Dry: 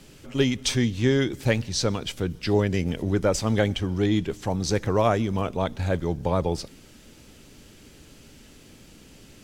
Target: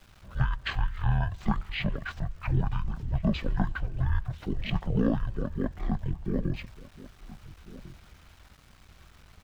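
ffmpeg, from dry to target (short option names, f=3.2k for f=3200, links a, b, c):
-filter_complex "[0:a]afreqshift=-160,asetrate=22696,aresample=44100,atempo=1.94306,highshelf=f=2.7k:g=-6,aeval=exprs='val(0)*gte(abs(val(0)),0.00266)':c=same,asplit=2[a][b];[b]adelay=1399,volume=-17dB,highshelf=f=4k:g=-31.5[c];[a][c]amix=inputs=2:normalize=0,volume=-3dB"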